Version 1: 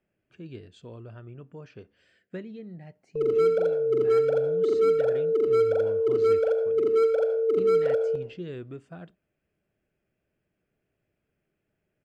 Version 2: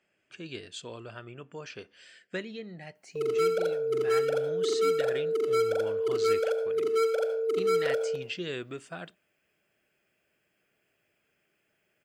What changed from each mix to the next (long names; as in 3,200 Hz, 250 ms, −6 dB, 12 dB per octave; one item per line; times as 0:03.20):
speech +7.0 dB
master: add spectral tilt +4 dB per octave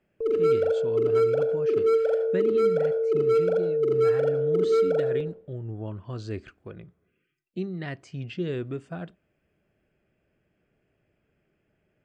background: entry −2.95 s
master: add spectral tilt −4 dB per octave